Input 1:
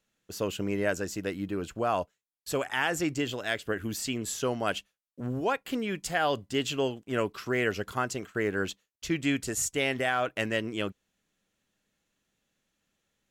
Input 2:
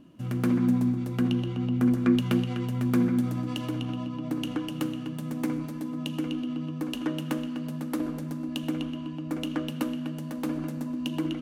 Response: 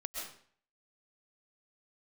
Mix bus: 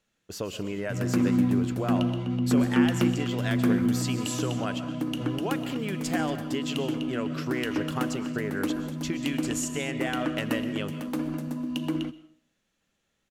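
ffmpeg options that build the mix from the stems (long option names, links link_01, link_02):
-filter_complex "[0:a]highshelf=frequency=11000:gain=-8,acompressor=threshold=-31dB:ratio=6,volume=0dB,asplit=3[link_01][link_02][link_03];[link_02]volume=-7dB[link_04];[link_03]volume=-14.5dB[link_05];[1:a]adelay=700,volume=-0.5dB,asplit=2[link_06][link_07];[link_07]volume=-16dB[link_08];[2:a]atrim=start_sample=2205[link_09];[link_04][link_08]amix=inputs=2:normalize=0[link_10];[link_10][link_09]afir=irnorm=-1:irlink=0[link_11];[link_05]aecho=0:1:231|462|693|924:1|0.27|0.0729|0.0197[link_12];[link_01][link_06][link_11][link_12]amix=inputs=4:normalize=0"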